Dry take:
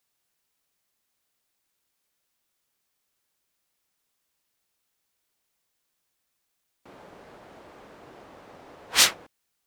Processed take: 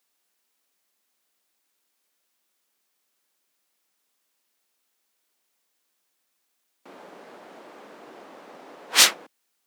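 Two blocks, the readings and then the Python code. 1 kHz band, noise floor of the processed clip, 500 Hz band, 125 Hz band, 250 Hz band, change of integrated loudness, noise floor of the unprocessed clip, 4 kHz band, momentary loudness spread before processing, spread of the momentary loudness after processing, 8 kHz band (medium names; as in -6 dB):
+3.0 dB, -75 dBFS, +3.0 dB, -6.5 dB, +2.0 dB, +3.0 dB, -78 dBFS, +3.0 dB, 4 LU, 4 LU, +3.0 dB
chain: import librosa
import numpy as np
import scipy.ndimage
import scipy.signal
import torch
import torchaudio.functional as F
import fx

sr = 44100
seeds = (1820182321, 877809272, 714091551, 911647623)

y = scipy.signal.sosfilt(scipy.signal.butter(4, 200.0, 'highpass', fs=sr, output='sos'), x)
y = y * librosa.db_to_amplitude(3.0)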